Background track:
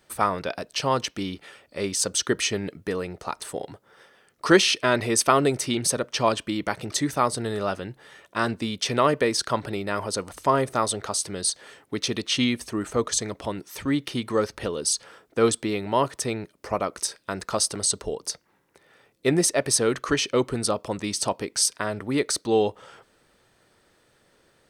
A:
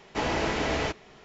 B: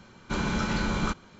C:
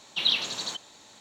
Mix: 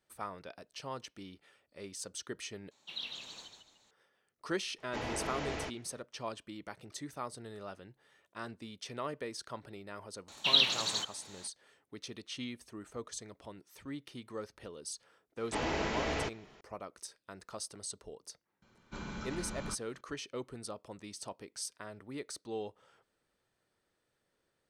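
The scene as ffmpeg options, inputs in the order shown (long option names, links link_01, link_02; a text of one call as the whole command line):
ffmpeg -i bed.wav -i cue0.wav -i cue1.wav -i cue2.wav -filter_complex "[3:a]asplit=2[link_01][link_02];[1:a]asplit=2[link_03][link_04];[0:a]volume=-18.5dB[link_05];[link_01]asplit=5[link_06][link_07][link_08][link_09][link_10];[link_07]adelay=148,afreqshift=-96,volume=-6dB[link_11];[link_08]adelay=296,afreqshift=-192,volume=-15.9dB[link_12];[link_09]adelay=444,afreqshift=-288,volume=-25.8dB[link_13];[link_10]adelay=592,afreqshift=-384,volume=-35.7dB[link_14];[link_06][link_11][link_12][link_13][link_14]amix=inputs=5:normalize=0[link_15];[link_02]equalizer=frequency=410:width_type=o:width=0.77:gain=-4[link_16];[link_05]asplit=2[link_17][link_18];[link_17]atrim=end=2.714[link_19];[link_15]atrim=end=1.2,asetpts=PTS-STARTPTS,volume=-17.5dB[link_20];[link_18]atrim=start=3.906[link_21];[link_03]atrim=end=1.24,asetpts=PTS-STARTPTS,volume=-11dB,afade=type=in:duration=0.004:curve=hsin,afade=type=out:start_time=1.236:duration=0.004:curve=hsin,adelay=4780[link_22];[link_16]atrim=end=1.2,asetpts=PTS-STARTPTS,volume=-1dB,afade=type=in:duration=0.004:curve=hsin,afade=type=out:start_time=1.196:duration=0.004:curve=hsin,adelay=10280[link_23];[link_04]atrim=end=1.24,asetpts=PTS-STARTPTS,volume=-6.5dB,afade=type=in:duration=0.004:curve=hsin,afade=type=out:start_time=1.236:duration=0.004:curve=hsin,adelay=15370[link_24];[2:a]atrim=end=1.39,asetpts=PTS-STARTPTS,volume=-14.5dB,afade=type=in:duration=0.004:curve=hsin,afade=type=out:start_time=1.386:duration=0.004:curve=hsin,adelay=18620[link_25];[link_19][link_20]acrossfade=duration=0.004:curve1=hsin:curve2=hsin[link_26];[link_26][link_21]acrossfade=duration=0.004:curve1=hsin:curve2=hsin[link_27];[link_27][link_22][link_23][link_24][link_25]amix=inputs=5:normalize=0" out.wav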